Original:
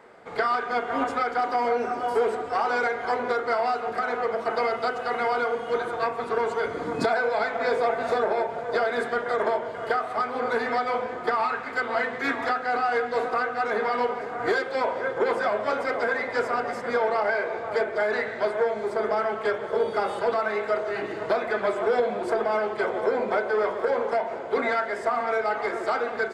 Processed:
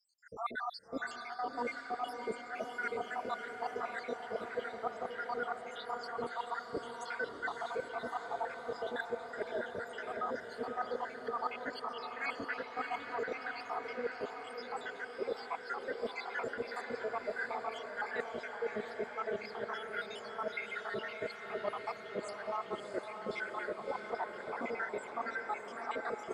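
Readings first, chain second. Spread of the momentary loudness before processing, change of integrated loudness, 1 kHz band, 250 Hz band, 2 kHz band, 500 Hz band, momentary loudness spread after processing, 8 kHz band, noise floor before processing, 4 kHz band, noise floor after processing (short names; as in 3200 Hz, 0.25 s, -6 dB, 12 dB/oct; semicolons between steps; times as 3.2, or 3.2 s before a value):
3 LU, -13.5 dB, -13.5 dB, -12.5 dB, -11.5 dB, -15.0 dB, 3 LU, n/a, -35 dBFS, -9.5 dB, -48 dBFS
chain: random spectral dropouts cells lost 84%; reverse; compressor, threshold -37 dBFS, peak gain reduction 16 dB; reverse; diffused feedback echo 0.633 s, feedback 67%, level -6.5 dB; gain +1.5 dB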